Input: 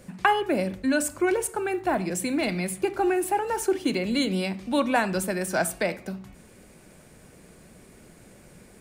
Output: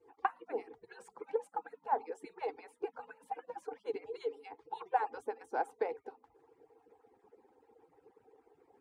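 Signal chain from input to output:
harmonic-percussive split with one part muted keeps percussive
pair of resonant band-passes 610 Hz, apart 0.84 octaves
level +2 dB

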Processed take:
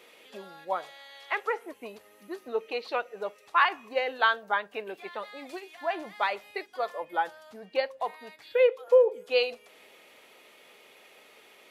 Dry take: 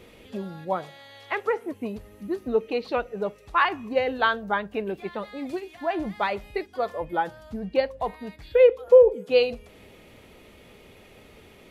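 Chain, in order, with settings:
Bessel high-pass filter 720 Hz, order 2

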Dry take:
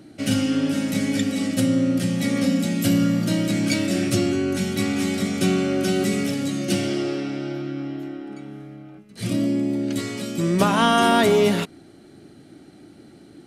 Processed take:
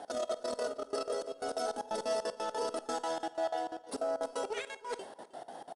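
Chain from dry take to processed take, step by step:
high-pass filter 44 Hz 24 dB per octave
notch filter 3,000 Hz, Q 9.8
hum removal 166 Hz, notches 39
compressor whose output falls as the input rises −25 dBFS, ratio −0.5
brickwall limiter −22 dBFS, peak gain reduction 10.5 dB
flanger 0.23 Hz, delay 2.8 ms, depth 2.8 ms, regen +66%
gate pattern "x.xxx.x..x" 131 BPM −24 dB
single-tap delay 732 ms −20 dB
convolution reverb RT60 0.60 s, pre-delay 113 ms, DRR 17 dB
wrong playback speed 33 rpm record played at 78 rpm
IMA ADPCM 88 kbit/s 22,050 Hz

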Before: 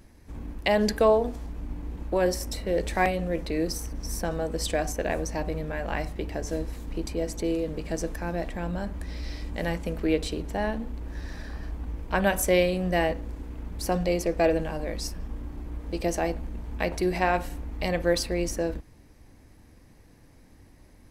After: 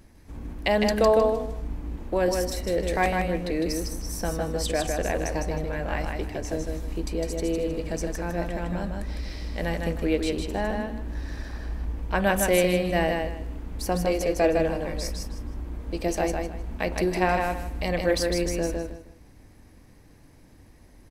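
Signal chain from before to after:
repeating echo 156 ms, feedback 24%, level −4 dB

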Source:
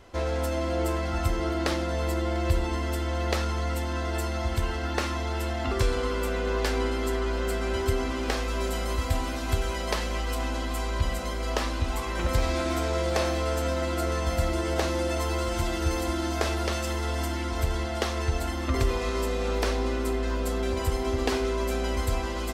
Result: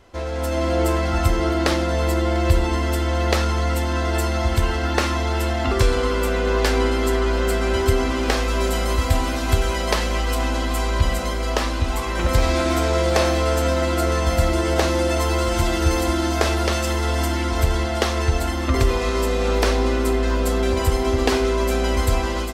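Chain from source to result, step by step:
automatic gain control gain up to 8 dB

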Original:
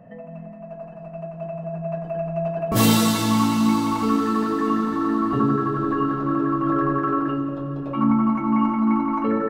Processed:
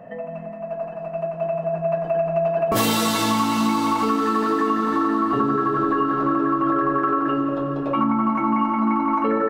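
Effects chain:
bass and treble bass −14 dB, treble −3 dB
downward compressor, threshold −26 dBFS, peak gain reduction 8.5 dB
low-shelf EQ 160 Hz +4.5 dB
level +8.5 dB

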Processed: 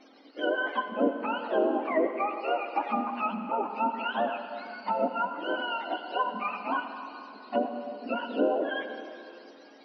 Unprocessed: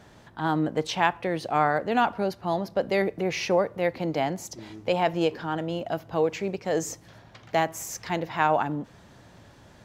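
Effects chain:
frequency axis turned over on the octave scale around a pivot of 690 Hz
treble cut that deepens with the level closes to 570 Hz, closed at −20 dBFS
linear-phase brick-wall band-pass 210–6,100 Hz
on a send: convolution reverb RT60 2.8 s, pre-delay 66 ms, DRR 7 dB

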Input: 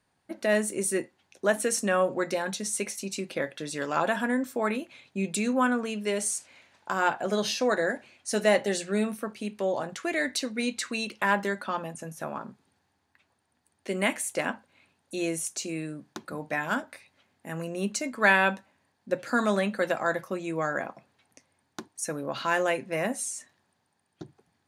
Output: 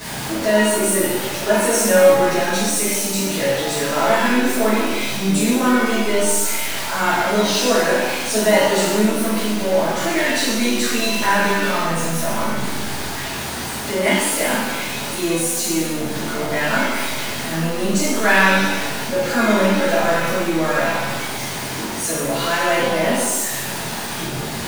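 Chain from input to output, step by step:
converter with a step at zero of −27.5 dBFS
reverb with rising layers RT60 1.1 s, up +7 semitones, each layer −8 dB, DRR −11.5 dB
level −5.5 dB

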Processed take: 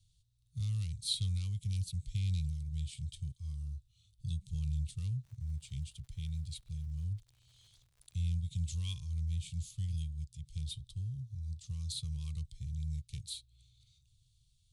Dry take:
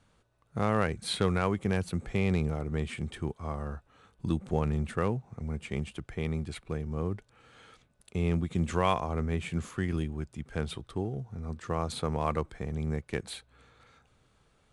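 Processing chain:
elliptic band-stop filter 120–3,700 Hz, stop band 40 dB
0:05.23–0:08.19: surface crackle 130 per second −57 dBFS

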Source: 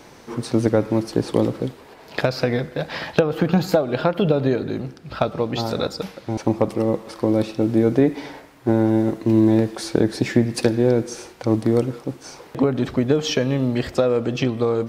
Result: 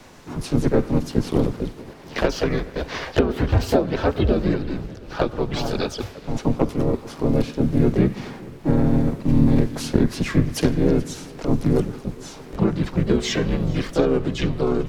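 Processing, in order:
feedback echo with a long and a short gap by turns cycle 716 ms, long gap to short 1.5 to 1, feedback 49%, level −22 dB
frequency shifter −96 Hz
pitch-shifted copies added −7 semitones −3 dB, +3 semitones −2 dB, +5 semitones −10 dB
level −4 dB

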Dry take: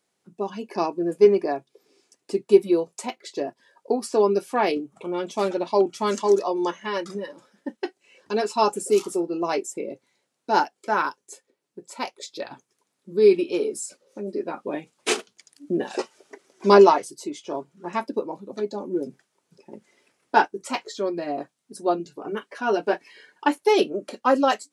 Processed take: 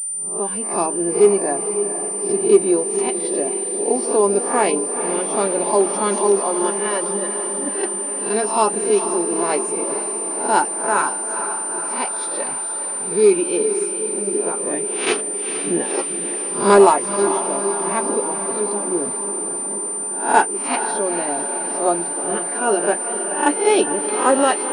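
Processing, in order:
peak hold with a rise ahead of every peak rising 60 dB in 0.43 s
in parallel at −7.5 dB: gain into a clipping stage and back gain 10 dB
on the sum: feedback delay with all-pass diffusion 474 ms, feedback 69%, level −9 dB
switching amplifier with a slow clock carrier 9,100 Hz
level −1 dB

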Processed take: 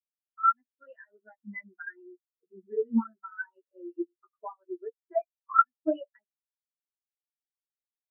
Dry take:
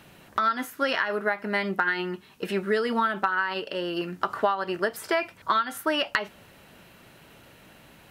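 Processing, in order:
multi-voice chorus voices 6, 1.4 Hz, delay 11 ms, depth 3 ms
every bin expanded away from the loudest bin 4 to 1
level +4.5 dB

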